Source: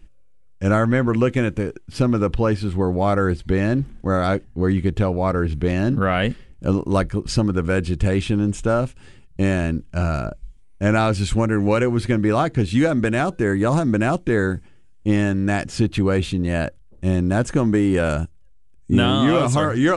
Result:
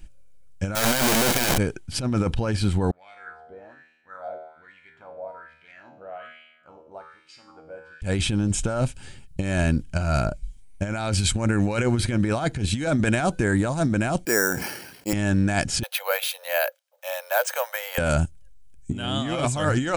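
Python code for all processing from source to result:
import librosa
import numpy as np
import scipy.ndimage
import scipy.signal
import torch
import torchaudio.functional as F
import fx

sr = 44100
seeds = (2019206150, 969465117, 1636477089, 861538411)

y = fx.chain(x, sr, fx.clip_1bit(),
    fx.peak_eq(hz=74.0, db=-14.0, octaves=2.0), at=(0.75, 1.58))
y = fx.chain(y, sr, fx.comb_fb(f0_hz=79.0, decay_s=1.1, harmonics='all', damping=0.0, mix_pct=90),
    fx.wah_lfo(hz=1.2, low_hz=600.0, high_hz=2500.0, q=3.3), at=(2.91, 8.02))
y = fx.chain(y, sr, fx.bandpass_edges(low_hz=390.0, high_hz=2800.0),
    fx.resample_bad(factor=6, down='filtered', up='hold'),
    fx.sustainer(db_per_s=57.0), at=(14.25, 15.13))
y = fx.chain(y, sr, fx.cheby1_highpass(hz=500.0, order=8),
    fx.resample_bad(factor=3, down='filtered', up='hold'), at=(15.83, 17.98))
y = fx.high_shelf(y, sr, hz=4200.0, db=9.5)
y = y + 0.31 * np.pad(y, (int(1.3 * sr / 1000.0), 0))[:len(y)]
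y = fx.over_compress(y, sr, threshold_db=-20.0, ratio=-0.5)
y = y * librosa.db_to_amplitude(-1.5)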